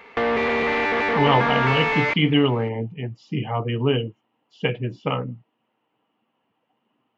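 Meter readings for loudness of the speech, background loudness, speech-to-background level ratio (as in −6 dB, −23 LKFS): −23.5 LKFS, −21.5 LKFS, −2.0 dB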